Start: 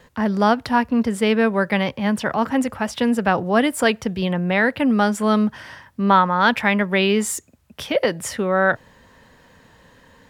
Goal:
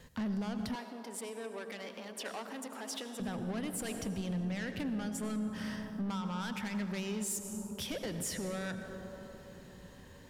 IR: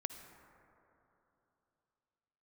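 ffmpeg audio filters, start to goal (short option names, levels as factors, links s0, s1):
-filter_complex "[0:a]acompressor=threshold=0.0794:ratio=6,asoftclip=type=tanh:threshold=0.0562,equalizer=f=930:w=0.33:g=-10[s0];[1:a]atrim=start_sample=2205,asetrate=29988,aresample=44100[s1];[s0][s1]afir=irnorm=-1:irlink=0,alimiter=level_in=1.78:limit=0.0631:level=0:latency=1:release=154,volume=0.562,asettb=1/sr,asplit=3[s2][s3][s4];[s2]atrim=end=0.754[s5];[s3]atrim=start=0.75:end=3.2,asetpts=PTS-STARTPTS,afade=t=in:d=0.004:c=qsin,afade=t=out:st=2.446:d=0.004:c=qsin,highpass=f=320:w=0.5412,highpass=f=320:w=1.3066[s6];[s4]atrim=start=3.196[s7];[s5][s6]acrossfade=d=0.004:c1=hsin:c2=qsin[s8];[s8][s7]acrossfade=d=0.004:c1=qsin:c2=hsin"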